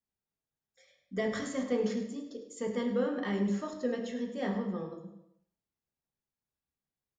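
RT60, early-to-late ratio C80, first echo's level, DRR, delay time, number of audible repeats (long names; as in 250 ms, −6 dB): 0.80 s, 8.5 dB, −12.0 dB, 1.0 dB, 103 ms, 1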